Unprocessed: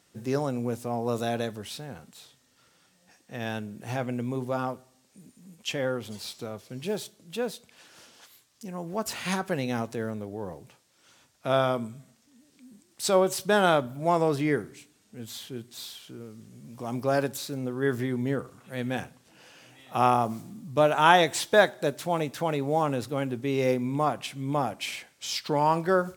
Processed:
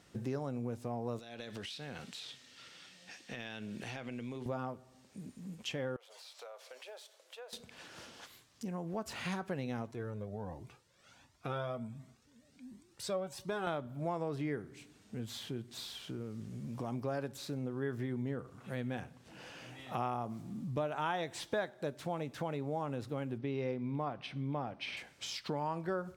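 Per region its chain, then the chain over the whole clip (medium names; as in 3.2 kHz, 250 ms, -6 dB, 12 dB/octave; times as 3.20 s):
1.19–4.46 s: frequency weighting D + compression 5:1, threshold -41 dBFS
5.96–7.53 s: elliptic high-pass 530 Hz, stop band 70 dB + compression 16:1, threshold -48 dBFS
9.91–13.67 s: band-stop 3.1 kHz, Q 29 + Shepard-style flanger rising 1.4 Hz
23.38–24.97 s: Savitzky-Golay filter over 15 samples + short-mantissa float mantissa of 6-bit
whole clip: bass shelf 120 Hz +7 dB; compression 3:1, threshold -42 dBFS; low-pass 3.8 kHz 6 dB/octave; trim +3 dB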